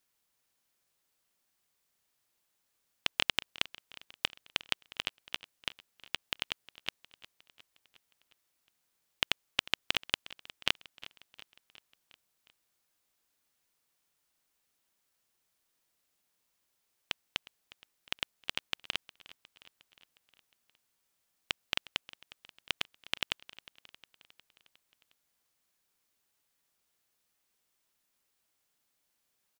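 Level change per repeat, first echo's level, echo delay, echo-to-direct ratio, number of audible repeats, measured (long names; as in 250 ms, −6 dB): −4.5 dB, −19.0 dB, 359 ms, −17.0 dB, 4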